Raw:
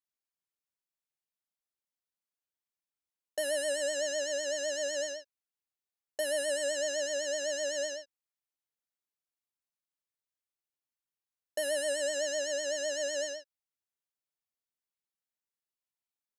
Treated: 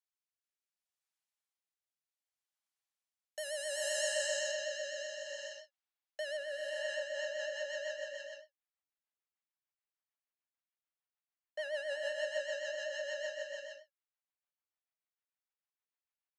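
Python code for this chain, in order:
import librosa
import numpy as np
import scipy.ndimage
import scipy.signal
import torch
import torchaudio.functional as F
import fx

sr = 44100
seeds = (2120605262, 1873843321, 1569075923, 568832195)

y = fx.lowpass(x, sr, hz=fx.steps((0.0, 11000.0), (4.08, 4400.0), (6.37, 2600.0)), slope=12)
y = fx.rev_gated(y, sr, seeds[0], gate_ms=480, shape='rising', drr_db=1.0)
y = fx.rotary_switch(y, sr, hz=0.65, then_hz=6.7, switch_at_s=6.63)
y = scipy.signal.sosfilt(scipy.signal.butter(4, 660.0, 'highpass', fs=sr, output='sos'), y)
y = fx.end_taper(y, sr, db_per_s=480.0)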